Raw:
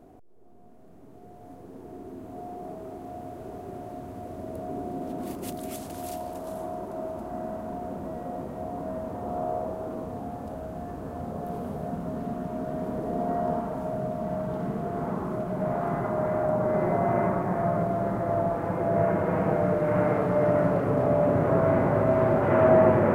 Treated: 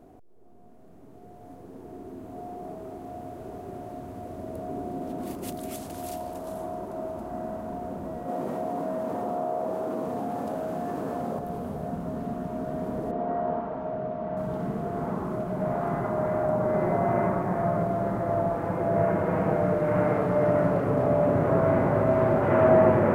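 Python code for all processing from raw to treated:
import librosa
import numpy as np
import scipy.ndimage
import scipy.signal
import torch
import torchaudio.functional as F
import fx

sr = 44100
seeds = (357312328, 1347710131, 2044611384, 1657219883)

y = fx.chain(x, sr, fx.highpass(hz=190.0, slope=12),
    fx.env_flatten(amount_pct=70), at=(8.28, 11.39))
y = fx.chain(y, sr, fx.lowpass(hz=5100.0, slope=12),
    fx.bass_treble(bass_db=-6, treble_db=-12), at=(13.11, 14.37))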